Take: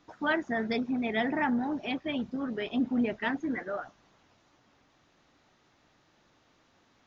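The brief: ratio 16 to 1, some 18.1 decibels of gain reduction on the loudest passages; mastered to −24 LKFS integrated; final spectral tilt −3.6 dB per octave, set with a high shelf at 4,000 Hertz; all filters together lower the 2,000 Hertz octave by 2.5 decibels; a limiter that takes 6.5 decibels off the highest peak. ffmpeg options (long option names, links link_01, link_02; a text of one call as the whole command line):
ffmpeg -i in.wav -af "equalizer=frequency=2000:width_type=o:gain=-4.5,highshelf=frequency=4000:gain=7,acompressor=threshold=-42dB:ratio=16,volume=23.5dB,alimiter=limit=-15dB:level=0:latency=1" out.wav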